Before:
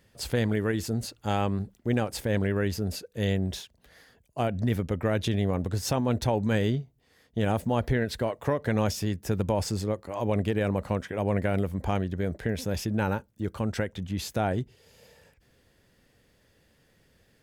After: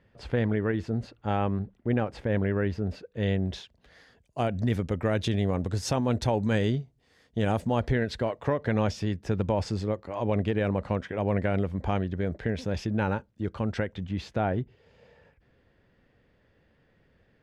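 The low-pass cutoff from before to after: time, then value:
2.96 s 2.3 kHz
3.45 s 3.8 kHz
4.47 s 8 kHz
7.49 s 8 kHz
8.57 s 4.2 kHz
13.76 s 4.2 kHz
14.61 s 2.4 kHz

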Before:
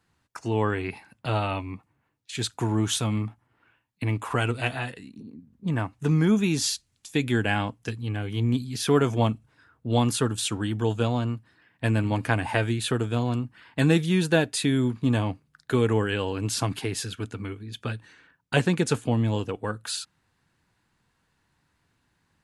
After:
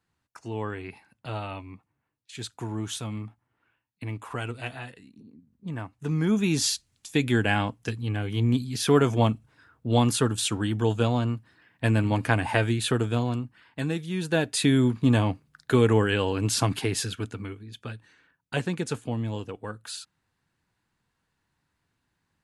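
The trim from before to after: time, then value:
5.95 s -7.5 dB
6.57 s +1 dB
13.10 s +1 dB
14.02 s -10 dB
14.64 s +2.5 dB
17.04 s +2.5 dB
17.82 s -6 dB

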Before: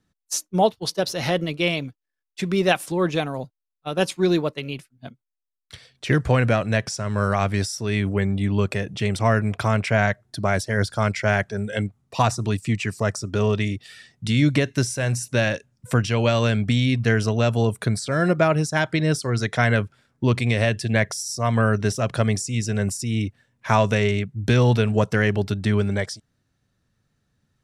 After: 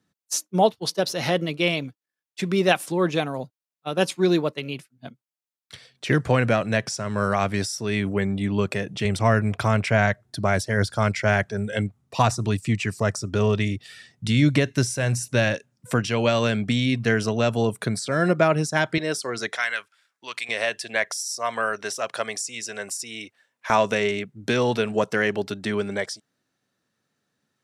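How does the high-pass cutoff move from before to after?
130 Hz
from 9.05 s 56 Hz
from 15.55 s 150 Hz
from 18.98 s 370 Hz
from 19.57 s 1.4 kHz
from 20.49 s 610 Hz
from 23.70 s 260 Hz

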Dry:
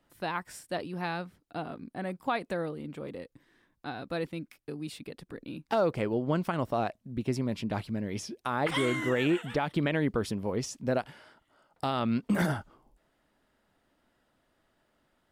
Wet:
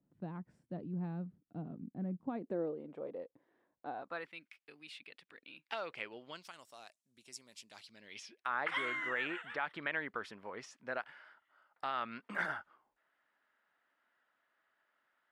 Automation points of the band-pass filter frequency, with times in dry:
band-pass filter, Q 1.7
2.20 s 180 Hz
2.86 s 600 Hz
3.91 s 600 Hz
4.37 s 2.5 kHz
6.17 s 2.5 kHz
6.60 s 7.5 kHz
7.66 s 7.5 kHz
8.49 s 1.6 kHz

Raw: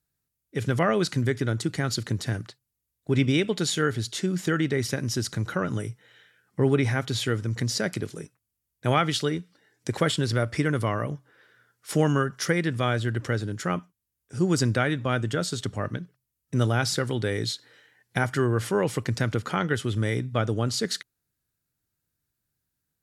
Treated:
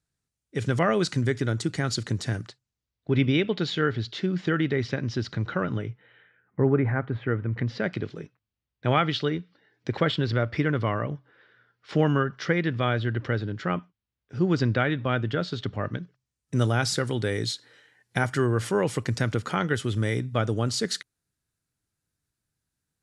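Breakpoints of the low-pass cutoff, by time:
low-pass 24 dB/octave
2.42 s 9.2 kHz
3.11 s 4.2 kHz
5.64 s 4.2 kHz
6.67 s 1.8 kHz
7.19 s 1.8 kHz
8.02 s 4.2 kHz
15.77 s 4.2 kHz
16.58 s 11 kHz

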